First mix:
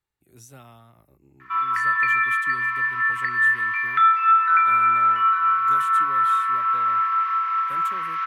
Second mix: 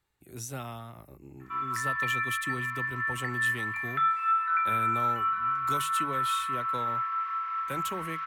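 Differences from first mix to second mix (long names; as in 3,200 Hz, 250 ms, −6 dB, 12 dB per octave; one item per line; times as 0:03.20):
speech +8.0 dB
background −9.5 dB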